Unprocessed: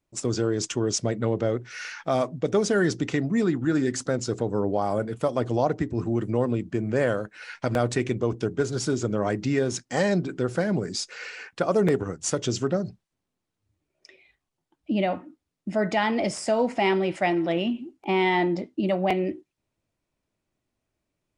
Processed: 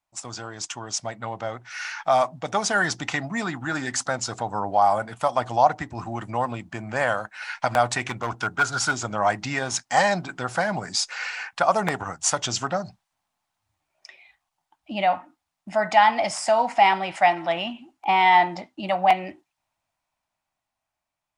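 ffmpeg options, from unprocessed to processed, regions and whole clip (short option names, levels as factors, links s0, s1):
-filter_complex "[0:a]asettb=1/sr,asplit=3[s0][s1][s2];[s0]atrim=end=8.074[s3];[s1]atrim=start=8.07:end=8.93,asetpts=PTS-STARTPTS,afade=t=in:d=0.004:c=qsin,afade=t=out:st=0.856:d=0.004:c=qsin,equalizer=f=1400:w=4.9:g=11.5,asoftclip=type=hard:threshold=0.141[s4];[s2]atrim=start=8.926[s5];[s3][s4]acrossfade=d=0.004:c1=hsin:c2=qsin[s6];[s6][s5]acrossfade=d=0.004:c1=qsin:c2=hsin,lowshelf=f=580:t=q:w=3:g=-10.5,dynaudnorm=f=430:g=9:m=2.51,volume=0.841"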